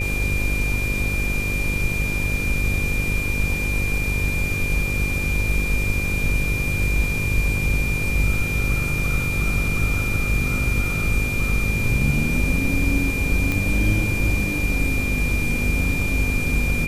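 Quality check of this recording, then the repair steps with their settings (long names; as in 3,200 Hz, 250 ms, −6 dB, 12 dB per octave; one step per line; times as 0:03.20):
mains buzz 50 Hz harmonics 11 −26 dBFS
whistle 2,400 Hz −25 dBFS
0:13.52: click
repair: click removal
hum removal 50 Hz, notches 11
notch filter 2,400 Hz, Q 30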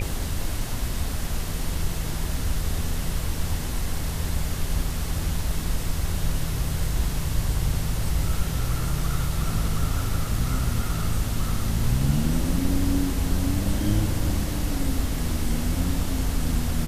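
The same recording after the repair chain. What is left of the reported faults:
none of them is left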